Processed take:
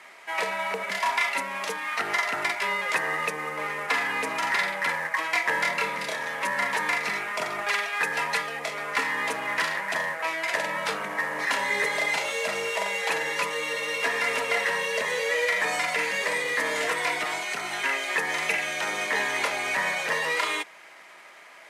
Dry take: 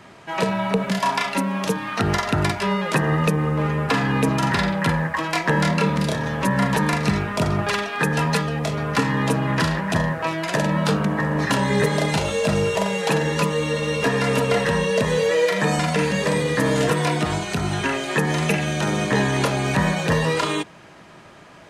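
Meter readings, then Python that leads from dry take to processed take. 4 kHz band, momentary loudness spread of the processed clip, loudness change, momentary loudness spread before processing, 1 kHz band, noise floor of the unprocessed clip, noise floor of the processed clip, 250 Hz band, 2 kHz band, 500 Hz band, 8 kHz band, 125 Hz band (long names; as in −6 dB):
−3.5 dB, 4 LU, −5.0 dB, 4 LU, −4.5 dB, −45 dBFS, −48 dBFS, −21.0 dB, +1.0 dB, −9.5 dB, −3.5 dB, −28.0 dB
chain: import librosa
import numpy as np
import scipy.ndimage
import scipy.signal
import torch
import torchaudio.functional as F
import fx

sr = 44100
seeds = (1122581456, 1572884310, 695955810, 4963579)

p1 = fx.cvsd(x, sr, bps=64000)
p2 = scipy.signal.sosfilt(scipy.signal.butter(2, 640.0, 'highpass', fs=sr, output='sos'), p1)
p3 = fx.peak_eq(p2, sr, hz=2100.0, db=10.5, octaves=0.33)
p4 = 10.0 ** (-22.0 / 20.0) * np.tanh(p3 / 10.0 ** (-22.0 / 20.0))
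p5 = p3 + F.gain(torch.from_numpy(p4), -6.5).numpy()
y = F.gain(torch.from_numpy(p5), -6.0).numpy()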